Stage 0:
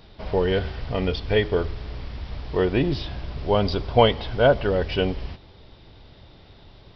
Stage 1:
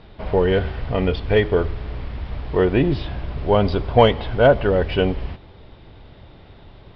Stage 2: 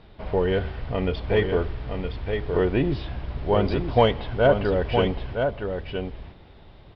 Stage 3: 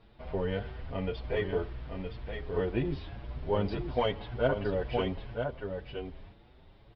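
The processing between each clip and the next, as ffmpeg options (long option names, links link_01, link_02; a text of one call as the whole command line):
ffmpeg -i in.wav -filter_complex "[0:a]lowpass=2800,asplit=2[link_01][link_02];[link_02]acontrast=67,volume=-3dB[link_03];[link_01][link_03]amix=inputs=2:normalize=0,volume=-3.5dB" out.wav
ffmpeg -i in.wav -af "aecho=1:1:966:0.501,volume=-5dB" out.wav
ffmpeg -i in.wav -filter_complex "[0:a]asplit=2[link_01][link_02];[link_02]adelay=6.8,afreqshift=1.9[link_03];[link_01][link_03]amix=inputs=2:normalize=1,volume=-6dB" out.wav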